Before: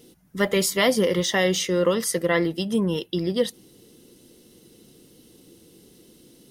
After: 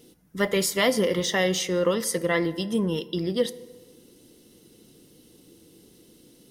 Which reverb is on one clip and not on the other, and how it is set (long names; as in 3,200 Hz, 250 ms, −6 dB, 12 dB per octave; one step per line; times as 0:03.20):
feedback delay network reverb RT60 1.4 s, low-frequency decay 0.95×, high-frequency decay 0.5×, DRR 15 dB
level −2 dB